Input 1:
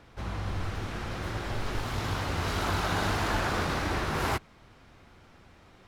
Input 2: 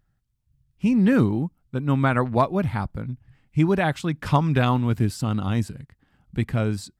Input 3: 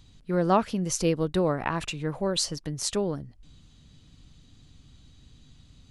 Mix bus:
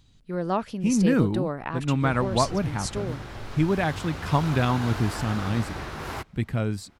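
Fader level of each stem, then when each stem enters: -5.0, -3.0, -4.0 dB; 1.85, 0.00, 0.00 s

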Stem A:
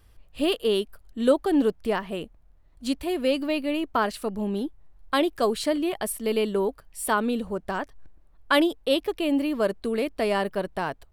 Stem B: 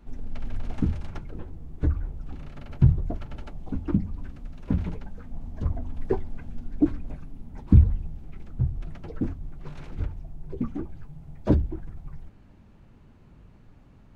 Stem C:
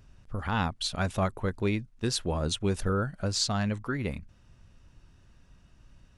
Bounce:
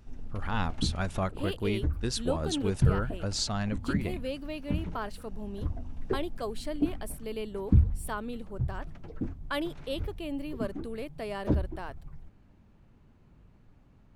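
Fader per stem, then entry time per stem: -12.0, -6.0, -3.0 dB; 1.00, 0.00, 0.00 s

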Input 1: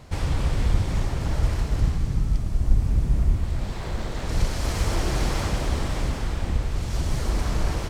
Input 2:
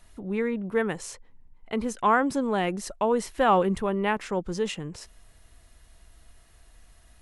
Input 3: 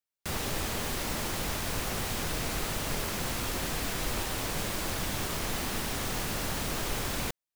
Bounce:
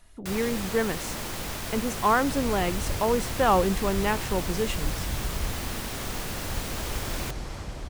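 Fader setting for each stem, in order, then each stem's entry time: -11.5, -0.5, -1.0 dB; 2.15, 0.00, 0.00 s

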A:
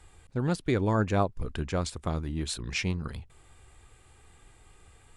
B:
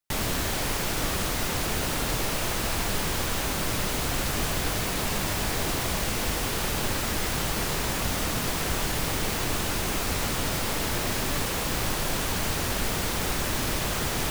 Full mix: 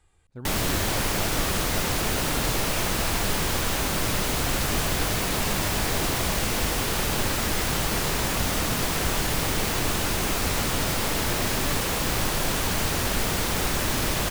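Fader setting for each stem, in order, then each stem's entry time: -9.5, +2.5 dB; 0.00, 0.35 s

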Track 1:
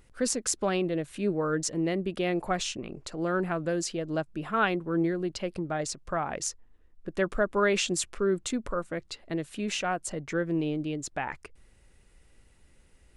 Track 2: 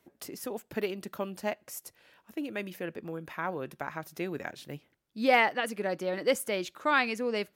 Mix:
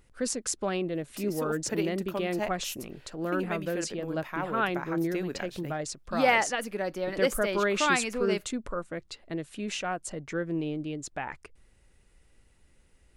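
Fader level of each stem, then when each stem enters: -2.5, 0.0 dB; 0.00, 0.95 s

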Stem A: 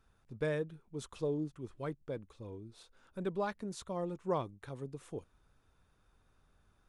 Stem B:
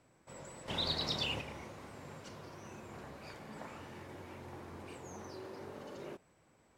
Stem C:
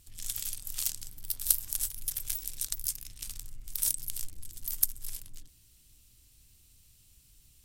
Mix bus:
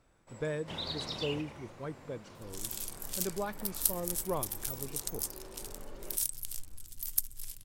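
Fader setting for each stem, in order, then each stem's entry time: -1.0, -3.0, -3.5 dB; 0.00, 0.00, 2.35 s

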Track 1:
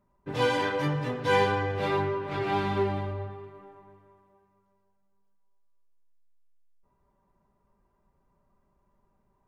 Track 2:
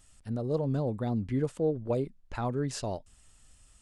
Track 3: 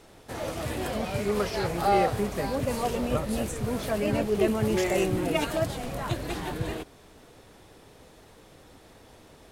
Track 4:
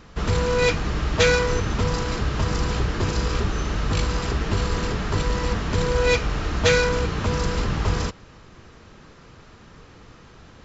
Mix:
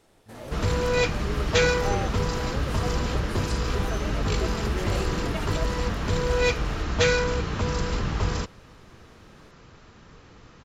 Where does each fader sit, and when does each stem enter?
-16.0, -14.0, -8.5, -3.0 dB; 2.45, 0.00, 0.00, 0.35 s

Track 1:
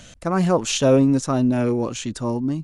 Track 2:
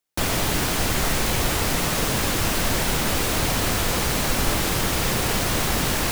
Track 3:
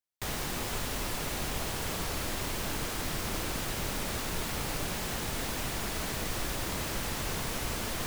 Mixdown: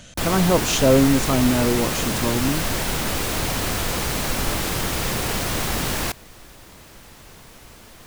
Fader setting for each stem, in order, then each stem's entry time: 0.0, -1.5, -11.0 dB; 0.00, 0.00, 0.00 s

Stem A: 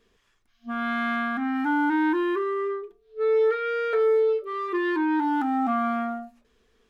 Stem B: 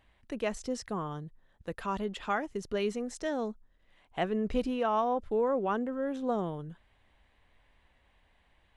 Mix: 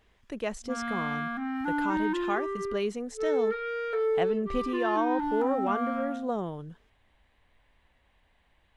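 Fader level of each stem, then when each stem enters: -6.0, 0.0 dB; 0.00, 0.00 s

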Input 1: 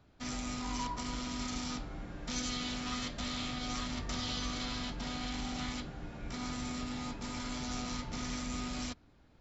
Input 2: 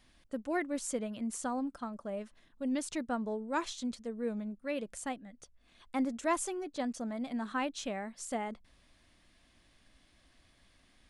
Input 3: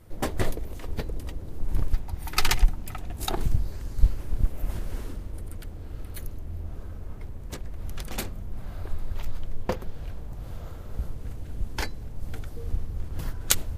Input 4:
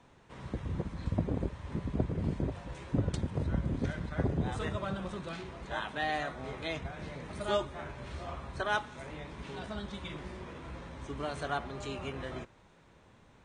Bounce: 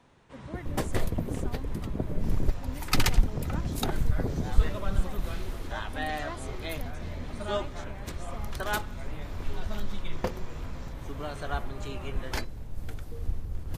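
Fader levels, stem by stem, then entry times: -15.5, -10.5, -2.5, -0.5 dB; 2.00, 0.00, 0.55, 0.00 s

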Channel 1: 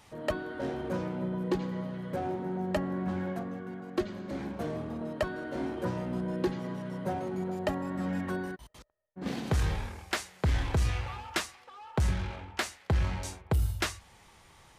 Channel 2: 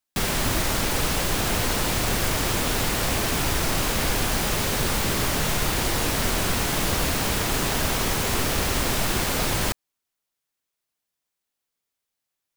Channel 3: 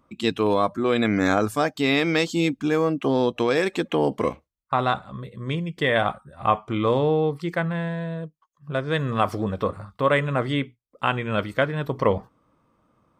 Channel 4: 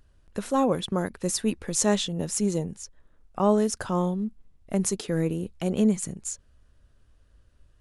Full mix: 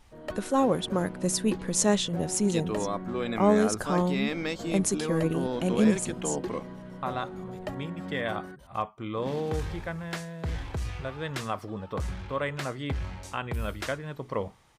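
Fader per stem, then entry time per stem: -5.5 dB, off, -10.5 dB, -0.5 dB; 0.00 s, off, 2.30 s, 0.00 s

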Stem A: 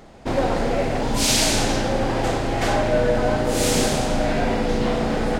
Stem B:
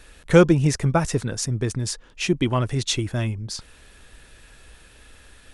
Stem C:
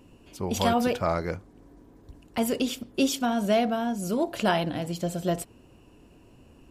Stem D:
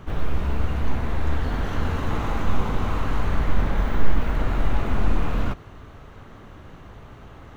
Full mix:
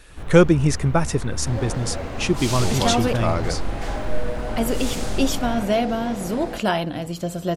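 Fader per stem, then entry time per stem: -10.5, +0.5, +2.5, -7.0 dB; 1.20, 0.00, 2.20, 0.10 s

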